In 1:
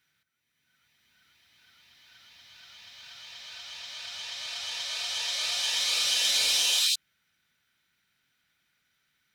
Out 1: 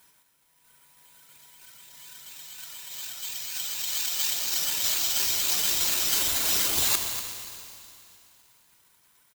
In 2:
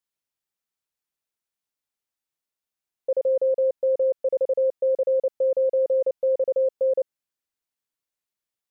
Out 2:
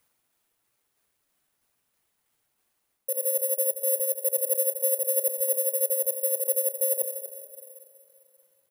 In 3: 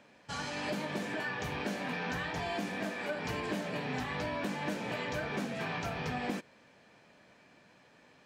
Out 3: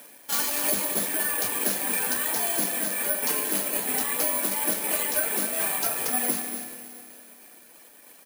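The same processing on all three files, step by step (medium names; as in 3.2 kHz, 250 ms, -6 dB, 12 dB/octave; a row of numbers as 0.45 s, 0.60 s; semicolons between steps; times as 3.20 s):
high-pass 230 Hz 24 dB/octave; reverb removal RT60 1.5 s; peaking EQ 11 kHz +14.5 dB 1.2 oct; reverse; compression 10:1, threshold -32 dBFS; reverse; tremolo saw down 3.1 Hz, depth 35%; on a send: delay 241 ms -10.5 dB; on the sum: Schroeder reverb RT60 2.8 s, combs from 29 ms, DRR 6 dB; careless resampling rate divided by 4×, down none, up zero stuff; normalise loudness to -24 LUFS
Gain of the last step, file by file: +5.0 dB, +2.5 dB, +7.5 dB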